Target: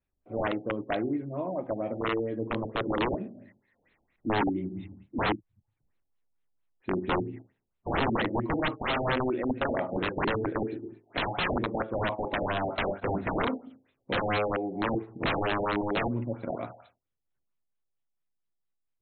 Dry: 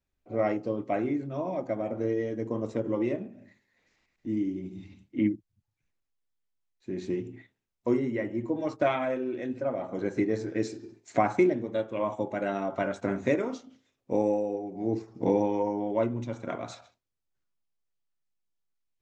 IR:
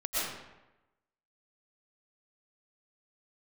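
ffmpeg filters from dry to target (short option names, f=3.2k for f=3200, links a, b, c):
-af "dynaudnorm=f=410:g=17:m=6dB,aeval=exprs='(mod(9.44*val(0)+1,2)-1)/9.44':c=same,afftfilt=real='re*lt(b*sr/1024,830*pow(4300/830,0.5+0.5*sin(2*PI*4.4*pts/sr)))':imag='im*lt(b*sr/1024,830*pow(4300/830,0.5+0.5*sin(2*PI*4.4*pts/sr)))':win_size=1024:overlap=0.75,volume=-1dB"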